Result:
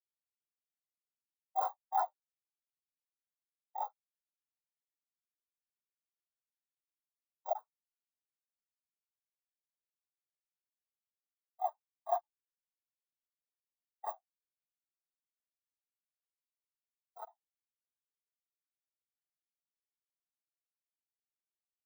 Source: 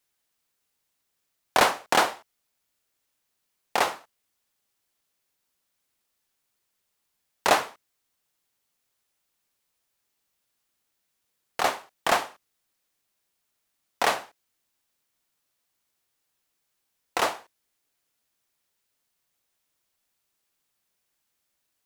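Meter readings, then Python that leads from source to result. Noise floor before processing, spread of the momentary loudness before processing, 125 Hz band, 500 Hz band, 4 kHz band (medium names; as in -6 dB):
-78 dBFS, 16 LU, under -40 dB, -14.0 dB, under -35 dB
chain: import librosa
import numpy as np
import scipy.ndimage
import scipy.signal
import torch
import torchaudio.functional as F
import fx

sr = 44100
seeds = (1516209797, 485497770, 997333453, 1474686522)

y = fx.bit_reversed(x, sr, seeds[0], block=16)
y = fx.highpass(y, sr, hz=660.0, slope=6)
y = 10.0 ** (-20.5 / 20.0) * np.tanh(y / 10.0 ** (-20.5 / 20.0))
y = fx.buffer_crackle(y, sr, first_s=0.69, period_s=0.36, block=1024, kind='zero')
y = fx.spectral_expand(y, sr, expansion=4.0)
y = y * 10.0 ** (1.0 / 20.0)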